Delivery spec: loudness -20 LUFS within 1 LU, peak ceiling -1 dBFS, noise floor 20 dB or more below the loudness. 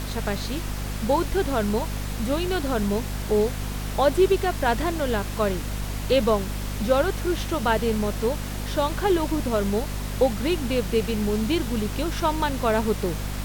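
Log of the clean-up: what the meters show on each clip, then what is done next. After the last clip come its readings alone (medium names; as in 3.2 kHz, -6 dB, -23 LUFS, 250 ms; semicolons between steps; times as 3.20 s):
hum 50 Hz; highest harmonic 250 Hz; hum level -28 dBFS; noise floor -31 dBFS; noise floor target -45 dBFS; loudness -25.0 LUFS; peak level -6.5 dBFS; loudness target -20.0 LUFS
-> de-hum 50 Hz, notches 5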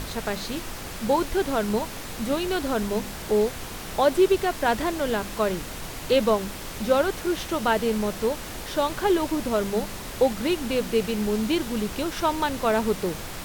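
hum not found; noise floor -36 dBFS; noise floor target -46 dBFS
-> noise print and reduce 10 dB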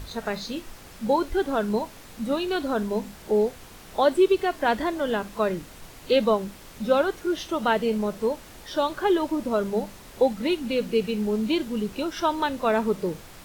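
noise floor -46 dBFS; loudness -25.5 LUFS; peak level -8.0 dBFS; loudness target -20.0 LUFS
-> trim +5.5 dB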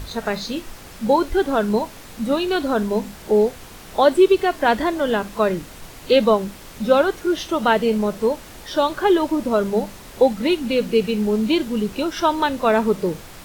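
loudness -20.0 LUFS; peak level -2.5 dBFS; noise floor -40 dBFS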